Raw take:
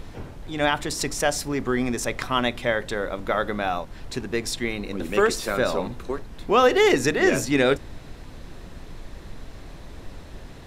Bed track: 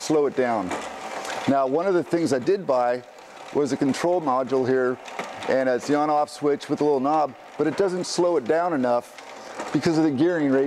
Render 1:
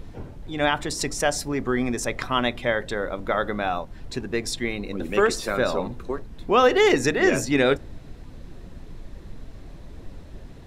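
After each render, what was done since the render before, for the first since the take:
broadband denoise 7 dB, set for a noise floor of −41 dBFS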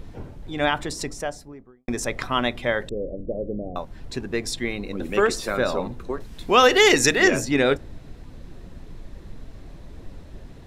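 0:00.68–0:01.88: fade out and dull
0:02.89–0:03.76: Butterworth low-pass 570 Hz 48 dB per octave
0:06.20–0:07.28: high-shelf EQ 2,100 Hz +11.5 dB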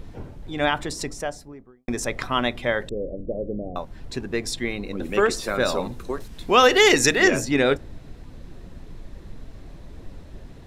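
0:05.60–0:06.28: high-shelf EQ 4,000 Hz +10.5 dB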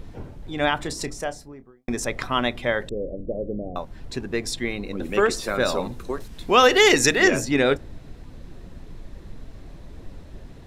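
0:00.78–0:01.96: double-tracking delay 30 ms −13.5 dB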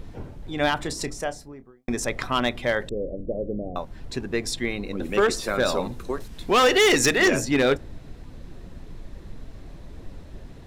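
hard clipping −13.5 dBFS, distortion −13 dB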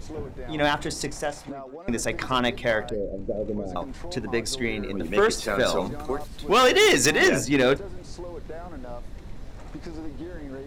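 mix in bed track −18 dB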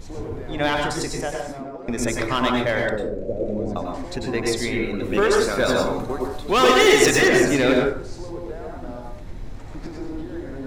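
dense smooth reverb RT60 0.53 s, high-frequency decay 0.5×, pre-delay 85 ms, DRR −0.5 dB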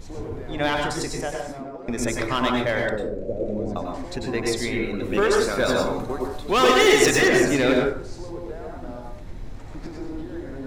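level −1.5 dB

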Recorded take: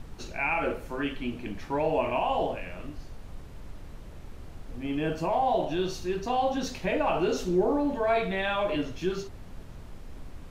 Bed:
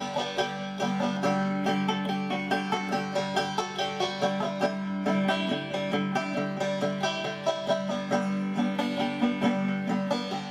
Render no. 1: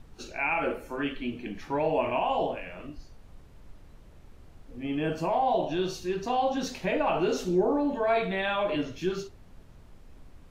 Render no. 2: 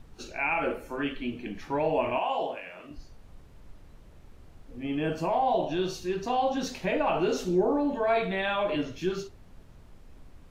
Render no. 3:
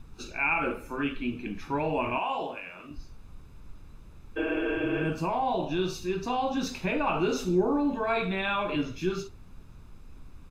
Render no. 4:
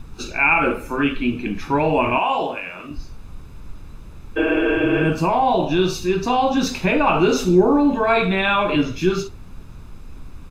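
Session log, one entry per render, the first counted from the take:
noise reduction from a noise print 8 dB
0:02.18–0:02.91: high-pass filter 500 Hz 6 dB per octave
0:04.40–0:05.02: healed spectral selection 220–3,500 Hz after; comb filter 0.8 ms, depth 46%
level +10.5 dB

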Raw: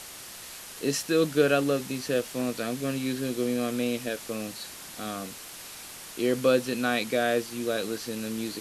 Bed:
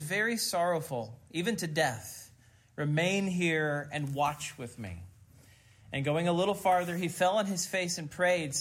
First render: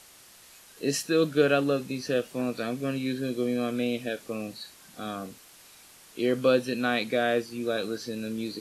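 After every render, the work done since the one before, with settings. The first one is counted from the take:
noise reduction from a noise print 10 dB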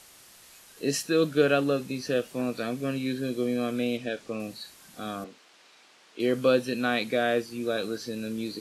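0:03.97–0:04.40: low-pass filter 6,800 Hz
0:05.24–0:06.20: band-pass filter 290–4,500 Hz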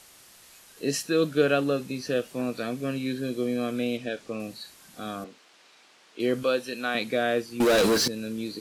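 0:06.43–0:06.95: high-pass filter 520 Hz 6 dB per octave
0:07.60–0:08.08: leveller curve on the samples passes 5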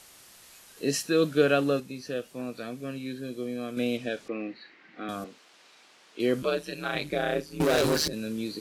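0:01.80–0:03.77: clip gain −6 dB
0:04.28–0:05.09: loudspeaker in its box 250–3,400 Hz, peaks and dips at 320 Hz +8 dB, 620 Hz −5 dB, 1,000 Hz −4 dB, 2,000 Hz +10 dB, 3,400 Hz −6 dB
0:06.42–0:08.13: ring modulation 75 Hz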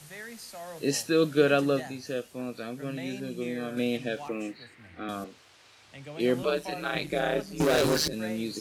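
mix in bed −13 dB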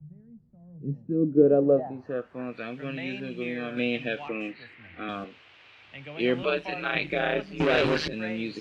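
low-pass filter sweep 160 Hz → 2,700 Hz, 0:00.89–0:02.68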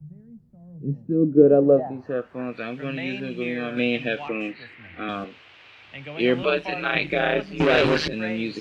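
level +4.5 dB

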